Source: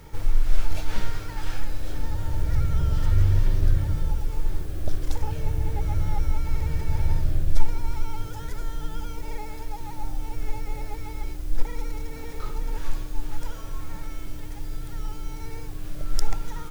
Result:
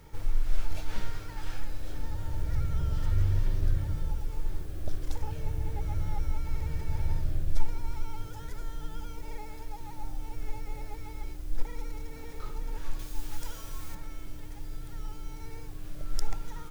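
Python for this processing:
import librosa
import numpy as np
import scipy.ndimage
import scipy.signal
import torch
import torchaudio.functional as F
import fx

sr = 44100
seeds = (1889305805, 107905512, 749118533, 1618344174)

y = fx.high_shelf(x, sr, hz=2400.0, db=9.5, at=(12.99, 13.95))
y = F.gain(torch.from_numpy(y), -6.5).numpy()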